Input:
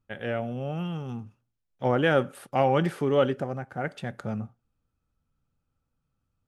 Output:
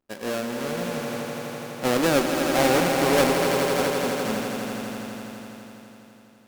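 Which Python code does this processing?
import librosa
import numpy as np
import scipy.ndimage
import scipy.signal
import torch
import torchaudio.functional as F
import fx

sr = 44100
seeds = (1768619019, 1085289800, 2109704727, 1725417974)

y = fx.halfwave_hold(x, sr)
y = fx.low_shelf_res(y, sr, hz=170.0, db=-12.0, q=1.5)
y = fx.echo_swell(y, sr, ms=83, loudest=5, wet_db=-8)
y = fx.tube_stage(y, sr, drive_db=9.0, bias=0.6)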